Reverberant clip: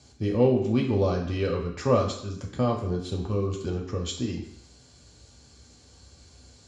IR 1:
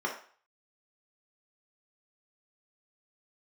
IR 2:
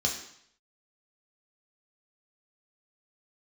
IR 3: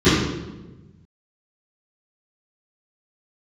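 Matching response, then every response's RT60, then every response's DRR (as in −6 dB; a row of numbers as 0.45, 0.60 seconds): 2; 0.45, 0.65, 1.1 seconds; −2.0, −1.5, −19.0 decibels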